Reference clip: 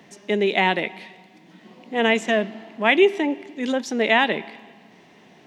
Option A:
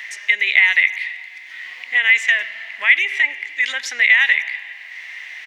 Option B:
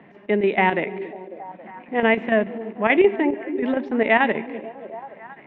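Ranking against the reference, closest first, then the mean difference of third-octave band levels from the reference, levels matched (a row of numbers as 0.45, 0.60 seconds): B, A; 5.5, 11.0 decibels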